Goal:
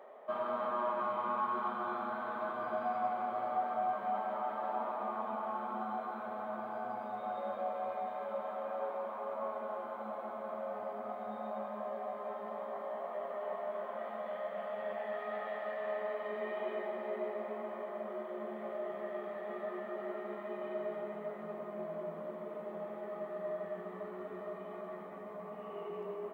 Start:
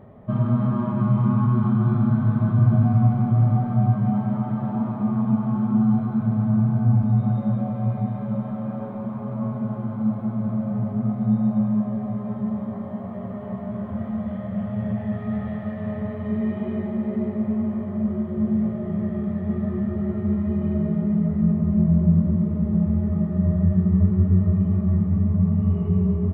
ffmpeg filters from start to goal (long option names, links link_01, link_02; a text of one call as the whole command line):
ffmpeg -i in.wav -af "highpass=frequency=490:width=0.5412,highpass=frequency=490:width=1.3066" out.wav